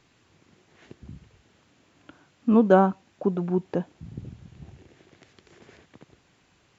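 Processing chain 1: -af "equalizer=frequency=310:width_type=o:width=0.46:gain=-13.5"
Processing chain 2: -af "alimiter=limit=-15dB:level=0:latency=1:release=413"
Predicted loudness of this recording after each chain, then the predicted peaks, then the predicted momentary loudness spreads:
−25.5, −29.0 LKFS; −7.0, −15.0 dBFS; 22, 23 LU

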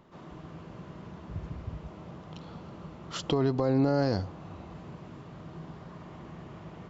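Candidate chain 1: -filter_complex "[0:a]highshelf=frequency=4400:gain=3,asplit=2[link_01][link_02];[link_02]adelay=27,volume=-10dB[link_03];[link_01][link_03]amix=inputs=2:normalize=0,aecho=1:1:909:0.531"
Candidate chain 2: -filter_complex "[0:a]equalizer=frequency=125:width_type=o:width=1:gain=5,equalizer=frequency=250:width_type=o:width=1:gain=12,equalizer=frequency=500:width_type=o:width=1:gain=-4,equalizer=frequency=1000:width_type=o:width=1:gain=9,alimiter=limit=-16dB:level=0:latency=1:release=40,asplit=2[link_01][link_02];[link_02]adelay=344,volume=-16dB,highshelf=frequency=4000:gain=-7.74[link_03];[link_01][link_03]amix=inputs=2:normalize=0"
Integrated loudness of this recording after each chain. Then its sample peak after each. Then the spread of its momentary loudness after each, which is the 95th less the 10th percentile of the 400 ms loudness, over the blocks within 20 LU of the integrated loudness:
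−31.5, −31.0 LKFS; −15.5, −15.0 dBFS; 19, 14 LU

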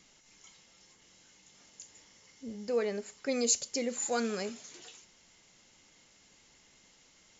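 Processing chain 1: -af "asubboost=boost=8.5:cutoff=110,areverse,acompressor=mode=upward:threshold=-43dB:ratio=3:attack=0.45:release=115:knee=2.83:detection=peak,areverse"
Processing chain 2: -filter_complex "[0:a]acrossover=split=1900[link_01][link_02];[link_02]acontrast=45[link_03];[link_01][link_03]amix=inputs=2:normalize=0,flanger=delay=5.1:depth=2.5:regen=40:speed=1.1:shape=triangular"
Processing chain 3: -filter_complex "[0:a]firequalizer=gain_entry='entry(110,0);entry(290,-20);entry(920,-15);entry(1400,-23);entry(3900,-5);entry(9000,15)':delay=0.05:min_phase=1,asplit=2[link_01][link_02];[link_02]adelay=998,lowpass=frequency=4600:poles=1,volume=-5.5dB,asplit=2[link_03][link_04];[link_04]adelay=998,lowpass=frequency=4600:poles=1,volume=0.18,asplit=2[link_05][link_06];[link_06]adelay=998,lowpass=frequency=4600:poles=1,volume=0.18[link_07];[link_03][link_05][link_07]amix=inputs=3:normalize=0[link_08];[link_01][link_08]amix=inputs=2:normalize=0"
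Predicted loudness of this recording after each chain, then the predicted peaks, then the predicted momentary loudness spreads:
−34.0, −33.5, −29.5 LKFS; −14.0, −13.0, −7.5 dBFS; 22, 23, 24 LU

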